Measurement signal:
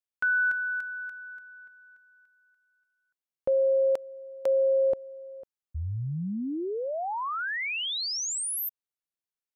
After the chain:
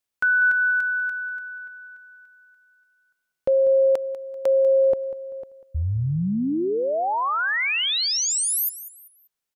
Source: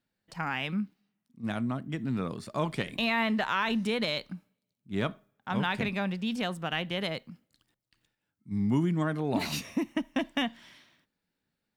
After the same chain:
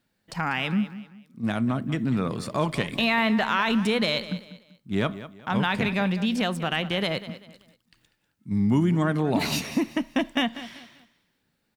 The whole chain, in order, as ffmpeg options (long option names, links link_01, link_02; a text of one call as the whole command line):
ffmpeg -i in.wav -filter_complex "[0:a]asplit=2[link_01][link_02];[link_02]acompressor=threshold=-31dB:ratio=6:attack=0.17:release=150:knee=1:detection=rms,volume=2dB[link_03];[link_01][link_03]amix=inputs=2:normalize=0,aecho=1:1:194|388|582:0.188|0.0603|0.0193,volume=2dB" out.wav